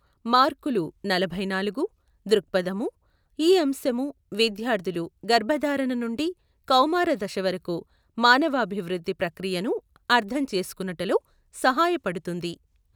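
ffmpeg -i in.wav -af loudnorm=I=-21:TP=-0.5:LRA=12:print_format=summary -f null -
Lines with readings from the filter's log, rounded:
Input Integrated:    -25.0 LUFS
Input True Peak:      -4.4 dBTP
Input LRA:             1.6 LU
Input Threshold:     -35.4 LUFS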